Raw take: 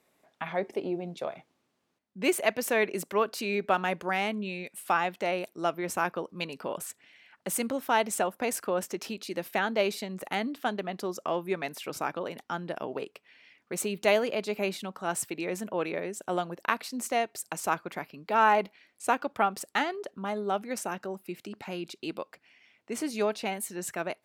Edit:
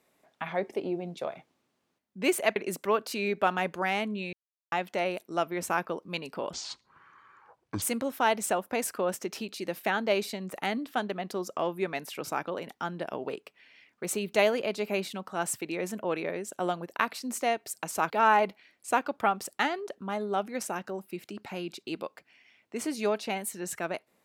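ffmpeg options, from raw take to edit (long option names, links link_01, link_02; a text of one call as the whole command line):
ffmpeg -i in.wav -filter_complex "[0:a]asplit=7[link_01][link_02][link_03][link_04][link_05][link_06][link_07];[link_01]atrim=end=2.562[link_08];[link_02]atrim=start=2.828:end=4.6,asetpts=PTS-STARTPTS,afade=type=out:start_time=1.768:duration=0.004:curve=hsin[link_09];[link_03]atrim=start=4.6:end=4.99,asetpts=PTS-STARTPTS,volume=0[link_10];[link_04]atrim=start=4.99:end=6.804,asetpts=PTS-STARTPTS,afade=type=in:duration=0.004:curve=hsin[link_11];[link_05]atrim=start=6.8:end=7.51,asetpts=PTS-STARTPTS,asetrate=24255,aresample=44100,atrim=end_sample=56929,asetpts=PTS-STARTPTS[link_12];[link_06]atrim=start=7.506:end=17.792[link_13];[link_07]atrim=start=18.258[link_14];[link_09][link_10][link_11]concat=n=3:v=0:a=1[link_15];[link_08][link_15]acrossfade=duration=0.004:curve1=hsin:curve2=hsin[link_16];[link_16][link_12]acrossfade=duration=0.004:curve1=hsin:curve2=hsin[link_17];[link_17][link_13]acrossfade=duration=0.004:curve1=hsin:curve2=hsin[link_18];[link_18][link_14]acrossfade=duration=0.004:curve1=hsin:curve2=hsin" out.wav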